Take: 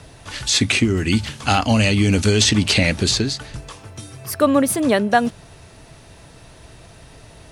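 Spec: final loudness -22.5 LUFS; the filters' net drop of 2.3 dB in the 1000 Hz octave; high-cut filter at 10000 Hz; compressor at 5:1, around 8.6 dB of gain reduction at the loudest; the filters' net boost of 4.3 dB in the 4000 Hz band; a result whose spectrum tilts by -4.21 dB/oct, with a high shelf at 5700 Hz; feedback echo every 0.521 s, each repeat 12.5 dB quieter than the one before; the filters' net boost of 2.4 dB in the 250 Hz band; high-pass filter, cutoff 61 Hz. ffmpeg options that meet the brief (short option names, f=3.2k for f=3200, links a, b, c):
-af "highpass=61,lowpass=10k,equalizer=f=250:t=o:g=3,equalizer=f=1k:t=o:g=-4,equalizer=f=4k:t=o:g=8,highshelf=f=5.7k:g=-7,acompressor=threshold=-20dB:ratio=5,aecho=1:1:521|1042|1563:0.237|0.0569|0.0137,volume=1.5dB"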